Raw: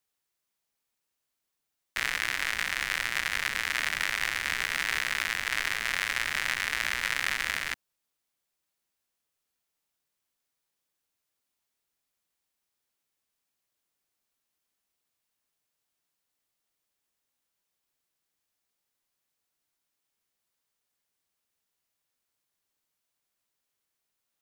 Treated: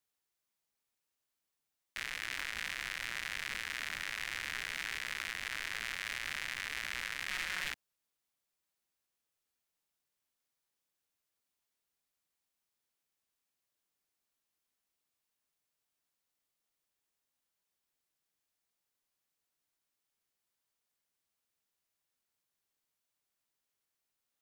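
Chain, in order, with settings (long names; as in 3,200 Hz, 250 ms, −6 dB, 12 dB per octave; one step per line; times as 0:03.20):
0:07.29–0:07.69: comb filter 5.5 ms, depth 88%
brickwall limiter −17.5 dBFS, peak gain reduction 10 dB
highs frequency-modulated by the lows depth 0.42 ms
level −4 dB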